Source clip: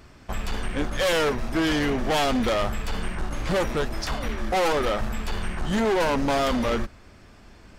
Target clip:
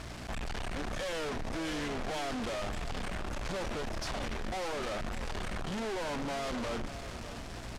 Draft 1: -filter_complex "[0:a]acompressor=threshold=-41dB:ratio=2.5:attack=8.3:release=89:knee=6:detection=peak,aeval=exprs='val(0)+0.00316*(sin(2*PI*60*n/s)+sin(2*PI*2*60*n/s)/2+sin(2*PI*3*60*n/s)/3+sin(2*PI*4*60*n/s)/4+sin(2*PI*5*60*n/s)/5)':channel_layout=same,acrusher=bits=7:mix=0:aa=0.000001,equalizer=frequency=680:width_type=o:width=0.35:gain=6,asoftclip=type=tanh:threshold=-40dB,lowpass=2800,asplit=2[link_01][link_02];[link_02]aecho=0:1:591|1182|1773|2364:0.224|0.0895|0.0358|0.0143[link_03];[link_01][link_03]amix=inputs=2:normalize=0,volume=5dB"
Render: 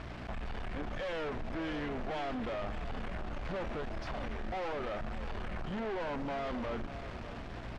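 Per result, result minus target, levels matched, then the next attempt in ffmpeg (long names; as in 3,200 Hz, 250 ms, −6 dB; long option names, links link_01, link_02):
8,000 Hz band −15.5 dB; downward compressor: peak gain reduction +13 dB
-filter_complex "[0:a]acompressor=threshold=-41dB:ratio=2.5:attack=8.3:release=89:knee=6:detection=peak,aeval=exprs='val(0)+0.00316*(sin(2*PI*60*n/s)+sin(2*PI*2*60*n/s)/2+sin(2*PI*3*60*n/s)/3+sin(2*PI*4*60*n/s)/4+sin(2*PI*5*60*n/s)/5)':channel_layout=same,acrusher=bits=7:mix=0:aa=0.000001,equalizer=frequency=680:width_type=o:width=0.35:gain=6,asoftclip=type=tanh:threshold=-40dB,lowpass=8400,asplit=2[link_01][link_02];[link_02]aecho=0:1:591|1182|1773|2364:0.224|0.0895|0.0358|0.0143[link_03];[link_01][link_03]amix=inputs=2:normalize=0,volume=5dB"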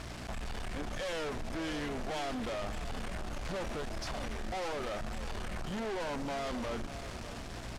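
downward compressor: peak gain reduction +13 dB
-filter_complex "[0:a]aeval=exprs='val(0)+0.00316*(sin(2*PI*60*n/s)+sin(2*PI*2*60*n/s)/2+sin(2*PI*3*60*n/s)/3+sin(2*PI*4*60*n/s)/4+sin(2*PI*5*60*n/s)/5)':channel_layout=same,acrusher=bits=7:mix=0:aa=0.000001,equalizer=frequency=680:width_type=o:width=0.35:gain=6,asoftclip=type=tanh:threshold=-40dB,lowpass=8400,asplit=2[link_01][link_02];[link_02]aecho=0:1:591|1182|1773|2364:0.224|0.0895|0.0358|0.0143[link_03];[link_01][link_03]amix=inputs=2:normalize=0,volume=5dB"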